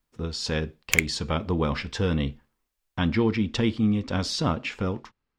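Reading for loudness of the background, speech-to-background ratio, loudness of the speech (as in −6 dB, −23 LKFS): −24.5 LKFS, −2.5 dB, −27.0 LKFS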